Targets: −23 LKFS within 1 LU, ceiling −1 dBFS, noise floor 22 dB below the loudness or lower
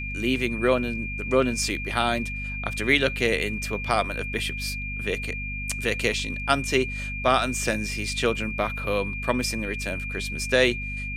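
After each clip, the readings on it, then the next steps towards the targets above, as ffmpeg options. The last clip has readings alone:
mains hum 50 Hz; hum harmonics up to 250 Hz; level of the hum −32 dBFS; interfering tone 2,400 Hz; level of the tone −32 dBFS; integrated loudness −25.5 LKFS; sample peak −5.5 dBFS; target loudness −23.0 LKFS
→ -af "bandreject=frequency=50:width_type=h:width=4,bandreject=frequency=100:width_type=h:width=4,bandreject=frequency=150:width_type=h:width=4,bandreject=frequency=200:width_type=h:width=4,bandreject=frequency=250:width_type=h:width=4"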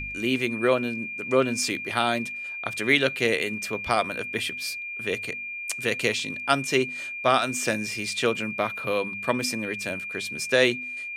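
mains hum none found; interfering tone 2,400 Hz; level of the tone −32 dBFS
→ -af "bandreject=frequency=2400:width=30"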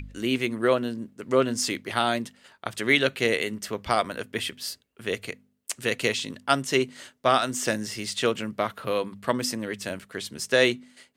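interfering tone none found; integrated loudness −26.5 LKFS; sample peak −6.0 dBFS; target loudness −23.0 LKFS
→ -af "volume=3.5dB"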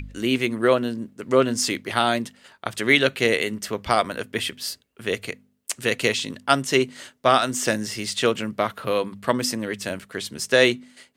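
integrated loudness −23.0 LKFS; sample peak −2.5 dBFS; background noise floor −65 dBFS

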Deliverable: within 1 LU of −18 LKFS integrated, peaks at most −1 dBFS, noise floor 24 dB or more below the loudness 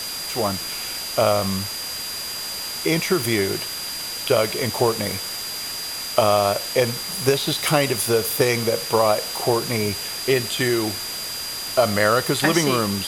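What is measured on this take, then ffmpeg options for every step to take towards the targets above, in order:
interfering tone 4,800 Hz; level of the tone −30 dBFS; background noise floor −30 dBFS; target noise floor −46 dBFS; integrated loudness −21.5 LKFS; sample peak −2.5 dBFS; target loudness −18.0 LKFS
→ -af "bandreject=frequency=4800:width=30"
-af "afftdn=noise_reduction=16:noise_floor=-30"
-af "volume=3.5dB,alimiter=limit=-1dB:level=0:latency=1"

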